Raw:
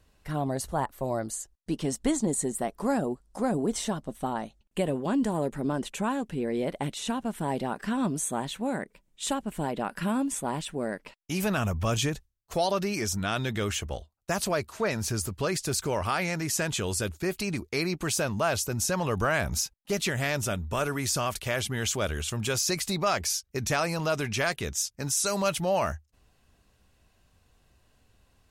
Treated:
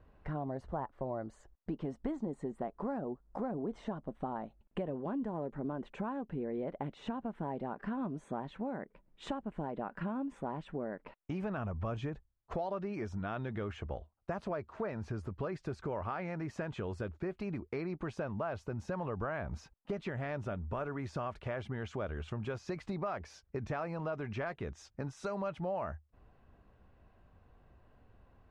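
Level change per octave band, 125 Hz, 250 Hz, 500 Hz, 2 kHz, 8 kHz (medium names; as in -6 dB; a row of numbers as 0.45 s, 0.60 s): -8.0 dB, -8.5 dB, -8.5 dB, -14.0 dB, under -30 dB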